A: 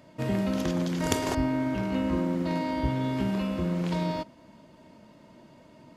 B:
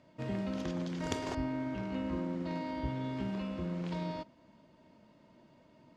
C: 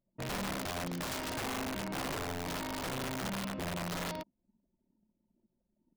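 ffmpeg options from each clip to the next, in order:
-af "lowpass=6.2k,volume=-8.5dB"
-af "anlmdn=0.01,aeval=exprs='(mod(37.6*val(0)+1,2)-1)/37.6':c=same"

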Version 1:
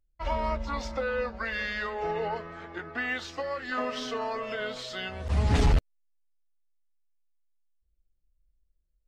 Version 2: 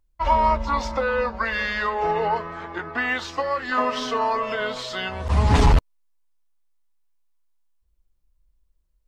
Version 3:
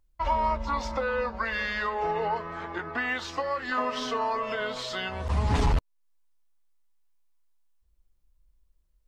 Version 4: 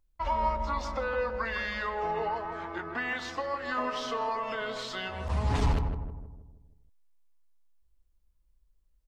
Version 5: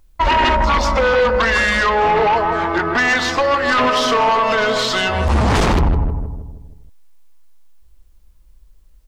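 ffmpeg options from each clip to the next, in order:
-af "equalizer=f=1k:t=o:w=0.46:g=9,volume=6dB"
-af "acompressor=threshold=-35dB:ratio=1.5"
-filter_complex "[0:a]asplit=2[a][b];[b]adelay=158,lowpass=f=980:p=1,volume=-5dB,asplit=2[c][d];[d]adelay=158,lowpass=f=980:p=1,volume=0.52,asplit=2[e][f];[f]adelay=158,lowpass=f=980:p=1,volume=0.52,asplit=2[g][h];[h]adelay=158,lowpass=f=980:p=1,volume=0.52,asplit=2[i][j];[j]adelay=158,lowpass=f=980:p=1,volume=0.52,asplit=2[k][l];[l]adelay=158,lowpass=f=980:p=1,volume=0.52,asplit=2[m][n];[n]adelay=158,lowpass=f=980:p=1,volume=0.52[o];[a][c][e][g][i][k][m][o]amix=inputs=8:normalize=0,volume=-3.5dB"
-af "aeval=exprs='0.158*sin(PI/2*3.55*val(0)/0.158)':c=same,volume=5dB"

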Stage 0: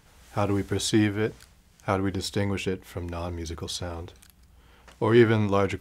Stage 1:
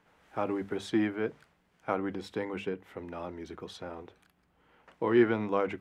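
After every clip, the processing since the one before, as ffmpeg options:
-filter_complex "[0:a]acrossover=split=160 2800:gain=0.141 1 0.158[a][b][c];[a][b][c]amix=inputs=3:normalize=0,bandreject=f=50:t=h:w=6,bandreject=f=100:t=h:w=6,bandreject=f=150:t=h:w=6,bandreject=f=200:t=h:w=6,volume=-4.5dB"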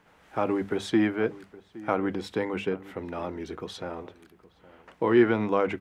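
-filter_complex "[0:a]asplit=2[a][b];[b]alimiter=limit=-20.5dB:level=0:latency=1:release=113,volume=-3dB[c];[a][c]amix=inputs=2:normalize=0,asplit=2[d][e];[e]adelay=816.3,volume=-19dB,highshelf=f=4k:g=-18.4[f];[d][f]amix=inputs=2:normalize=0,volume=1dB"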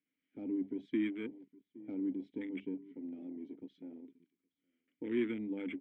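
-filter_complex "[0:a]aeval=exprs='clip(val(0),-1,0.15)':c=same,asplit=3[a][b][c];[a]bandpass=f=270:t=q:w=8,volume=0dB[d];[b]bandpass=f=2.29k:t=q:w=8,volume=-6dB[e];[c]bandpass=f=3.01k:t=q:w=8,volume=-9dB[f];[d][e][f]amix=inputs=3:normalize=0,afwtdn=0.00447"

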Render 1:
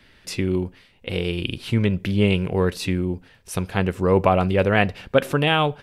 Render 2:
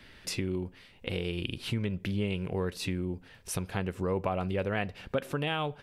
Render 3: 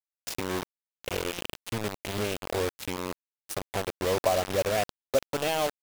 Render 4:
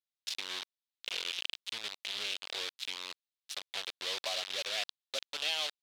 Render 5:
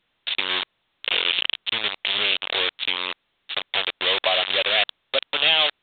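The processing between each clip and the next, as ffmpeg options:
-af "acompressor=threshold=-34dB:ratio=2.5"
-af "equalizer=f=160:t=o:w=0.67:g=-9,equalizer=f=630:t=o:w=0.67:g=10,equalizer=f=1.6k:t=o:w=0.67:g=-4,acrusher=bits=4:mix=0:aa=0.000001"
-af "bandpass=f=3.7k:t=q:w=2.4:csg=0,volume=5.5dB"
-filter_complex "[0:a]asplit=2[a][b];[b]aeval=exprs='0.188*sin(PI/2*2.82*val(0)/0.188)':c=same,volume=-6dB[c];[a][c]amix=inputs=2:normalize=0,volume=7.5dB" -ar 8000 -c:a pcm_alaw

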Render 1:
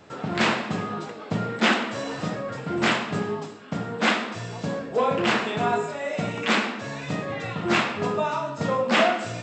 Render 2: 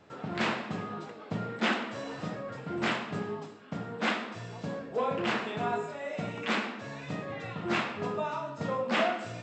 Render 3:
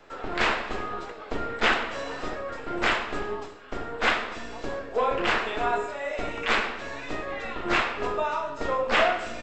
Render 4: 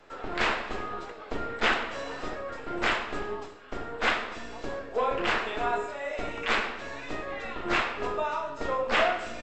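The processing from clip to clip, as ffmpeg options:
-af "highshelf=f=6.6k:g=-8,volume=-7.5dB"
-filter_complex "[0:a]acrossover=split=280|950|1800[a][b][c][d];[a]aeval=exprs='abs(val(0))':c=same[e];[c]crystalizer=i=6:c=0[f];[d]aecho=1:1:271:0.0944[g];[e][b][f][g]amix=inputs=4:normalize=0,volume=5.5dB"
-af "aresample=32000,aresample=44100,volume=-2.5dB"

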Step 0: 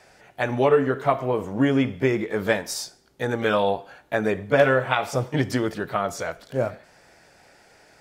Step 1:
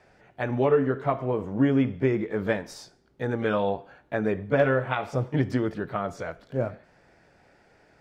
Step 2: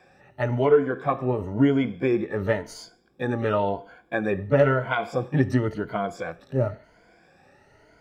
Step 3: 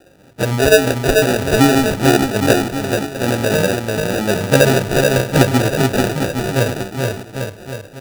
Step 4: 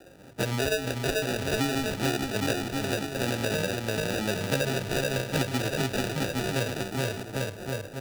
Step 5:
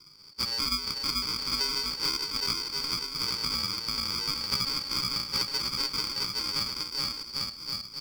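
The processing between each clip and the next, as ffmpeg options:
-af "lowpass=f=1.2k:p=1,equalizer=f=720:t=o:w=1.7:g=-4"
-af "afftfilt=real='re*pow(10,14/40*sin(2*PI*(1.8*log(max(b,1)*sr/1024/100)/log(2)-(0.96)*(pts-256)/sr)))':imag='im*pow(10,14/40*sin(2*PI*(1.8*log(max(b,1)*sr/1024/100)/log(2)-(0.96)*(pts-256)/sr)))':win_size=1024:overlap=0.75"
-filter_complex "[0:a]asplit=2[a][b];[b]aecho=0:1:440|814|1132|1402|1632:0.631|0.398|0.251|0.158|0.1[c];[a][c]amix=inputs=2:normalize=0,acrusher=samples=41:mix=1:aa=0.000001,volume=7dB"
-filter_complex "[0:a]acrossover=split=130|2100|5400[a][b][c][d];[a]acompressor=threshold=-36dB:ratio=4[e];[b]acompressor=threshold=-26dB:ratio=4[f];[c]acompressor=threshold=-31dB:ratio=4[g];[d]acompressor=threshold=-36dB:ratio=4[h];[e][f][g][h]amix=inputs=4:normalize=0,volume=-2.5dB"
-af "afftfilt=real='real(if(lt(b,272),68*(eq(floor(b/68),0)*1+eq(floor(b/68),1)*2+eq(floor(b/68),2)*3+eq(floor(b/68),3)*0)+mod(b,68),b),0)':imag='imag(if(lt(b,272),68*(eq(floor(b/68),0)*1+eq(floor(b/68),1)*2+eq(floor(b/68),2)*3+eq(floor(b/68),3)*0)+mod(b,68),b),0)':win_size=2048:overlap=0.75,volume=-2.5dB"

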